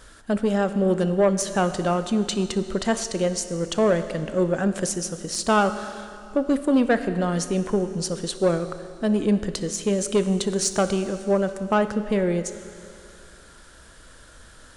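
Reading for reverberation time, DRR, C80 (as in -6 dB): 2.5 s, 10.0 dB, 11.5 dB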